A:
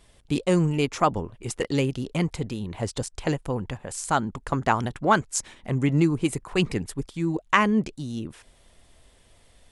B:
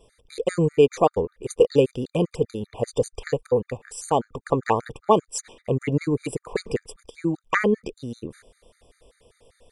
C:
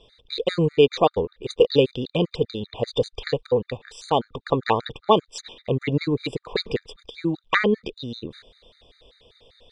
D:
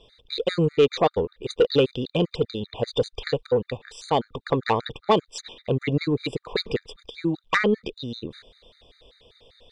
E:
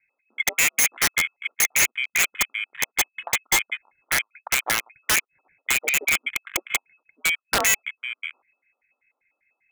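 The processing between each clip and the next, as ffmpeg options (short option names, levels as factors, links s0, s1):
-af "equalizer=f=470:t=o:w=0.59:g=15,afftfilt=real='re*gt(sin(2*PI*5.1*pts/sr)*(1-2*mod(floor(b*sr/1024/1200),2)),0)':imag='im*gt(sin(2*PI*5.1*pts/sr)*(1-2*mod(floor(b*sr/1024/1200),2)),0)':win_size=1024:overlap=0.75"
-af "lowpass=f=3800:t=q:w=6.9"
-af "asoftclip=type=tanh:threshold=0.355"
-af "lowpass=f=2200:t=q:w=0.5098,lowpass=f=2200:t=q:w=0.6013,lowpass=f=2200:t=q:w=0.9,lowpass=f=2200:t=q:w=2.563,afreqshift=-2600,afwtdn=0.0316,aeval=exprs='(mod(5.62*val(0)+1,2)-1)/5.62':c=same,volume=1.26"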